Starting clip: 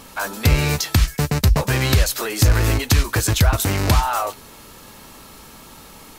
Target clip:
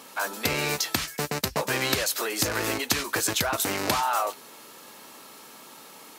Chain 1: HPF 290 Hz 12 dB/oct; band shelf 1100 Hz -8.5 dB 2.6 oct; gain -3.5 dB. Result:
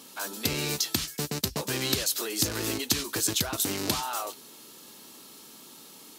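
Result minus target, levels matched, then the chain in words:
1000 Hz band -6.5 dB
HPF 290 Hz 12 dB/oct; gain -3.5 dB

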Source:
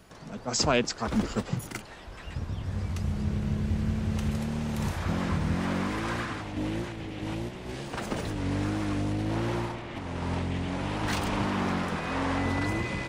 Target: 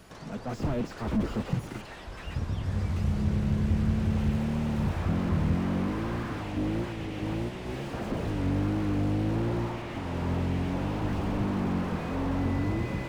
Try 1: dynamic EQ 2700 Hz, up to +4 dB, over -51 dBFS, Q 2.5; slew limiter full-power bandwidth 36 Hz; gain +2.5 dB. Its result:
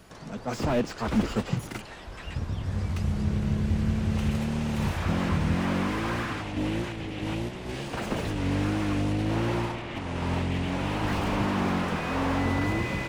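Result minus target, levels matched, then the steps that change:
slew limiter: distortion -6 dB
change: slew limiter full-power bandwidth 12.5 Hz

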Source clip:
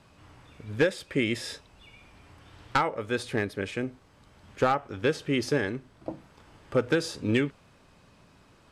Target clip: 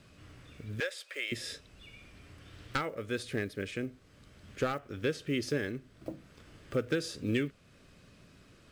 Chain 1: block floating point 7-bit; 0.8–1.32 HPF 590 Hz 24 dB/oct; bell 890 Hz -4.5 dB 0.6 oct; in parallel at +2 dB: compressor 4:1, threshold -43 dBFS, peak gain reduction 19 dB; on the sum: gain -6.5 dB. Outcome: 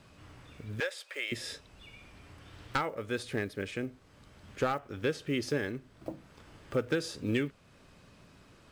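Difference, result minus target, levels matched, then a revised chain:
1000 Hz band +3.0 dB
block floating point 7-bit; 0.8–1.32 HPF 590 Hz 24 dB/oct; bell 890 Hz -13 dB 0.6 oct; in parallel at +2 dB: compressor 4:1, threshold -43 dBFS, peak gain reduction 18.5 dB; on the sum: gain -6.5 dB

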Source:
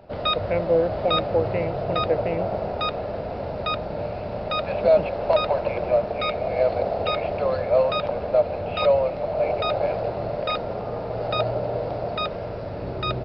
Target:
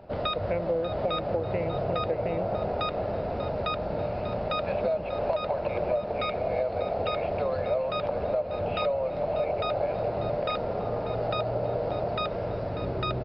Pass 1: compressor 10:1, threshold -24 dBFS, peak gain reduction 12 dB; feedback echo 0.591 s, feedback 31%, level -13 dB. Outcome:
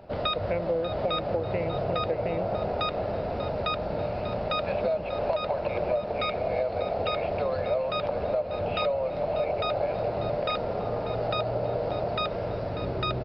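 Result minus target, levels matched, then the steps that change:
4000 Hz band +2.5 dB
add after compressor: high shelf 2600 Hz -4.5 dB

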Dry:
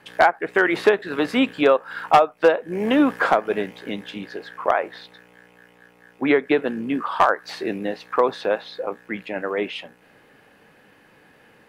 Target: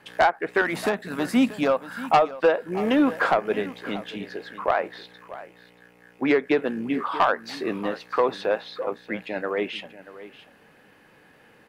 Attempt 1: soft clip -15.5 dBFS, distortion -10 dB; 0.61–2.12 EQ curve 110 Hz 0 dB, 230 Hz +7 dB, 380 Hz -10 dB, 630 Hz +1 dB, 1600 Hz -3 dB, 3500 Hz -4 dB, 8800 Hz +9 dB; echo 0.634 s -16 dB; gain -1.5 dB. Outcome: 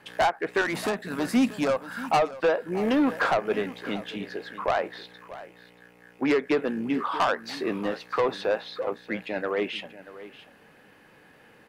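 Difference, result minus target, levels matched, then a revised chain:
soft clip: distortion +9 dB
soft clip -8 dBFS, distortion -18 dB; 0.61–2.12 EQ curve 110 Hz 0 dB, 230 Hz +7 dB, 380 Hz -10 dB, 630 Hz +1 dB, 1600 Hz -3 dB, 3500 Hz -4 dB, 8800 Hz +9 dB; echo 0.634 s -16 dB; gain -1.5 dB

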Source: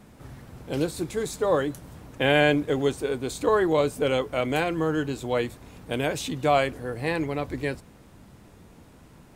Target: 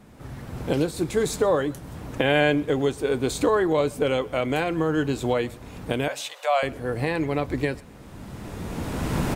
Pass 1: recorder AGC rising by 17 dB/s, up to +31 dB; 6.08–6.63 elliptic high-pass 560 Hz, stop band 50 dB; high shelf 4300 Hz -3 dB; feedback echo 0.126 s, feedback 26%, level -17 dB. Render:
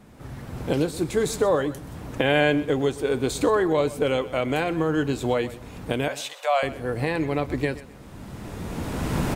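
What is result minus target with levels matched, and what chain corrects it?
echo-to-direct +7.5 dB
recorder AGC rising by 17 dB/s, up to +31 dB; 6.08–6.63 elliptic high-pass 560 Hz, stop band 50 dB; high shelf 4300 Hz -3 dB; feedback echo 0.126 s, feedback 26%, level -24.5 dB

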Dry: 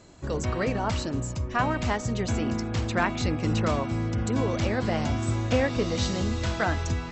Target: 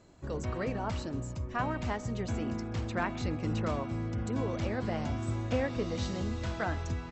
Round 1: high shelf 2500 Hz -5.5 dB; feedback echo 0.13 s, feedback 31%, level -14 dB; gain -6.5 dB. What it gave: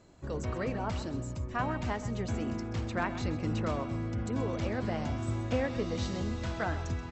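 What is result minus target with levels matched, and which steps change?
echo-to-direct +10 dB
change: feedback echo 0.13 s, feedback 31%, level -24 dB

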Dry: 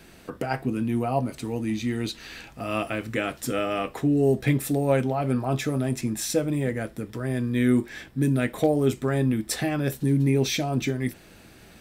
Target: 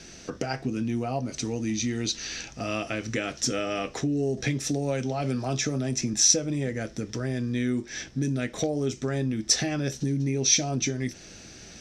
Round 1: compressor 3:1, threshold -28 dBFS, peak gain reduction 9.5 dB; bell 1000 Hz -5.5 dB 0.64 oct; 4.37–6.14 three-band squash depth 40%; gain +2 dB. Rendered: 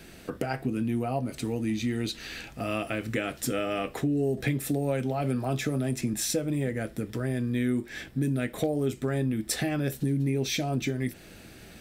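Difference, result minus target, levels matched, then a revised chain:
8000 Hz band -9.0 dB
compressor 3:1, threshold -28 dBFS, peak gain reduction 9.5 dB; synth low-pass 5900 Hz, resonance Q 6.8; bell 1000 Hz -5.5 dB 0.64 oct; 4.37–6.14 three-band squash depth 40%; gain +2 dB

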